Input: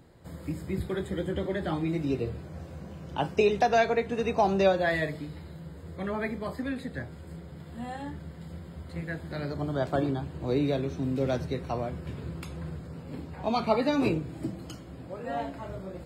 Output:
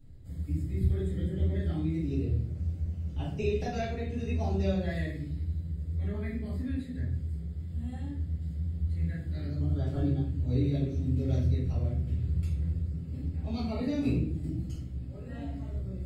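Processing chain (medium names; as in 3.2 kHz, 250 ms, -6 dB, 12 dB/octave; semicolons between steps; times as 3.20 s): amplifier tone stack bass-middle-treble 10-0-1; hum notches 60/120/180 Hz; simulated room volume 71 m³, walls mixed, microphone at 2.3 m; trim +4.5 dB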